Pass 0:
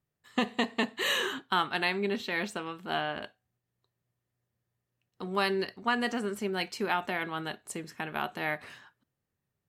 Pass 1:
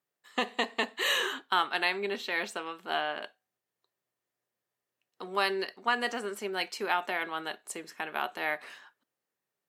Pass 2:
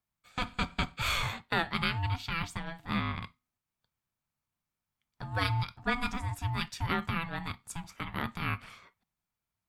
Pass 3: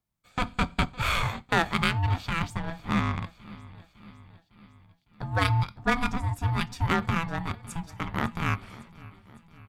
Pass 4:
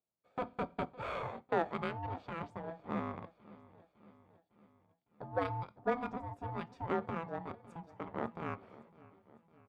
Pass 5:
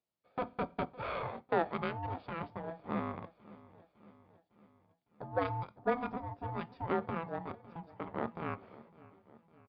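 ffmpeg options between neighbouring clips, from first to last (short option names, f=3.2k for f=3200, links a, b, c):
-af "highpass=390,volume=1dB"
-af "aeval=exprs='val(0)*sin(2*PI*500*n/s)':c=same,lowshelf=f=240:t=q:w=1.5:g=7"
-filter_complex "[0:a]aecho=1:1:556|1112|1668|2224|2780:0.126|0.0743|0.0438|0.0259|0.0153,asplit=2[a][b];[b]adynamicsmooth=sensitivity=3.5:basefreq=860,volume=1dB[c];[a][c]amix=inputs=2:normalize=0"
-af "bandpass=f=500:t=q:w=1.9:csg=0"
-af "aresample=11025,aresample=44100,volume=1.5dB"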